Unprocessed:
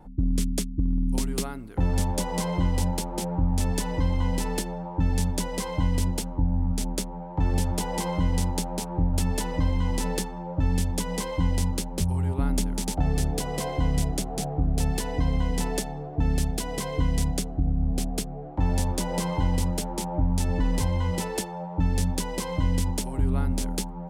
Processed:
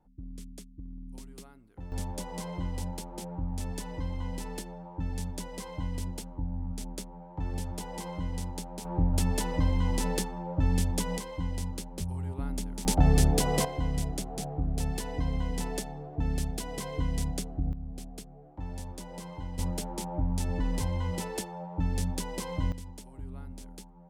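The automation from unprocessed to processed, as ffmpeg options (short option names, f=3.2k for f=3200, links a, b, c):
-af "asetnsamples=n=441:p=0,asendcmd='1.92 volume volume -10dB;8.85 volume volume -2dB;11.18 volume volume -9dB;12.85 volume volume 3dB;13.65 volume volume -6dB;17.73 volume volume -14.5dB;19.59 volume volume -5.5dB;22.72 volume volume -17.5dB',volume=-19dB"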